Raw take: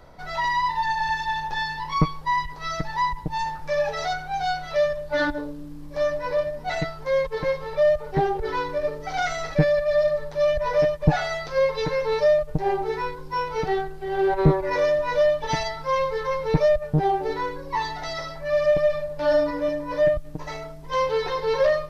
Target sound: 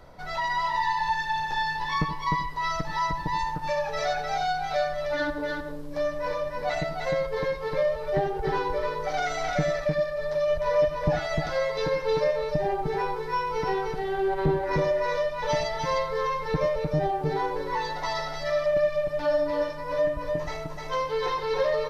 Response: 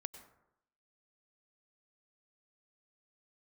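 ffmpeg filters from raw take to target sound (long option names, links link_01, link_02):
-filter_complex "[0:a]acompressor=threshold=-26dB:ratio=2,aecho=1:1:304:0.668[link_01];[1:a]atrim=start_sample=2205,afade=type=out:start_time=0.2:duration=0.01,atrim=end_sample=9261,asetrate=57330,aresample=44100[link_02];[link_01][link_02]afir=irnorm=-1:irlink=0,volume=5dB"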